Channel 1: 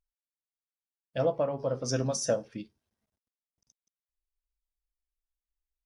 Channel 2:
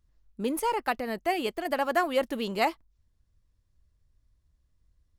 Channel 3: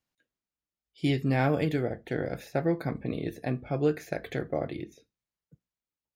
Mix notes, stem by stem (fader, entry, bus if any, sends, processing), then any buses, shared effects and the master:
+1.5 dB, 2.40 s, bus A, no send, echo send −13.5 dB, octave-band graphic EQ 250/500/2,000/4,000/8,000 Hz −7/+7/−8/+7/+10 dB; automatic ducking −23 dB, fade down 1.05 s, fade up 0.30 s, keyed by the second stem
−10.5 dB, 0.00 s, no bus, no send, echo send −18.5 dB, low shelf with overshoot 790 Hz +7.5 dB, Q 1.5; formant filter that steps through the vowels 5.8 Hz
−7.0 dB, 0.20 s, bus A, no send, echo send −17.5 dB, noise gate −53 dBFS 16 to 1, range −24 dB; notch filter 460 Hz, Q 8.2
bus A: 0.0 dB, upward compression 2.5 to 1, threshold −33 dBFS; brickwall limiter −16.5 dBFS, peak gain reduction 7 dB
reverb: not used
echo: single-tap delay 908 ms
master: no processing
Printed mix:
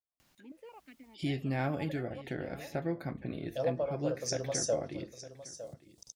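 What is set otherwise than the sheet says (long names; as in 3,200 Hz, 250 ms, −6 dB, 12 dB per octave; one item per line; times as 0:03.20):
stem 1 +1.5 dB → −9.0 dB
stem 2: missing low shelf with overshoot 790 Hz +7.5 dB, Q 1.5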